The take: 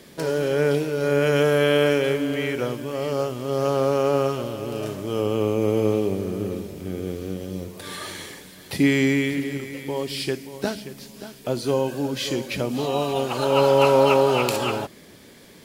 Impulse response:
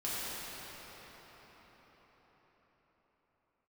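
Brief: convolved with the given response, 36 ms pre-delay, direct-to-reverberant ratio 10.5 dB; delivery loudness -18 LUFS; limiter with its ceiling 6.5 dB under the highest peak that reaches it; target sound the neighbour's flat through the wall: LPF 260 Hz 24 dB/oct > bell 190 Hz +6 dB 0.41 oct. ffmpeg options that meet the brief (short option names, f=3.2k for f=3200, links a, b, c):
-filter_complex "[0:a]alimiter=limit=-11.5dB:level=0:latency=1,asplit=2[a][b];[1:a]atrim=start_sample=2205,adelay=36[c];[b][c]afir=irnorm=-1:irlink=0,volume=-17dB[d];[a][d]amix=inputs=2:normalize=0,lowpass=f=260:w=0.5412,lowpass=f=260:w=1.3066,equalizer=f=190:t=o:w=0.41:g=6,volume=12.5dB"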